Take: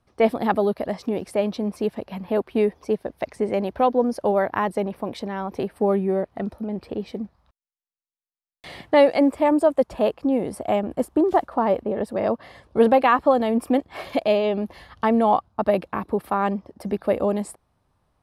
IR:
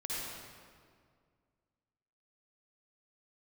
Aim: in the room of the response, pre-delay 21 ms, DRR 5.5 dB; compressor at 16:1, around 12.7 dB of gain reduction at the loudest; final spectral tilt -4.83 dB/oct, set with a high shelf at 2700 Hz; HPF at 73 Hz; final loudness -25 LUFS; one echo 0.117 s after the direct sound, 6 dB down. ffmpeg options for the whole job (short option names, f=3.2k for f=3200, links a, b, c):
-filter_complex "[0:a]highpass=73,highshelf=f=2.7k:g=6,acompressor=threshold=-24dB:ratio=16,aecho=1:1:117:0.501,asplit=2[a][b];[1:a]atrim=start_sample=2205,adelay=21[c];[b][c]afir=irnorm=-1:irlink=0,volume=-8.5dB[d];[a][d]amix=inputs=2:normalize=0,volume=3.5dB"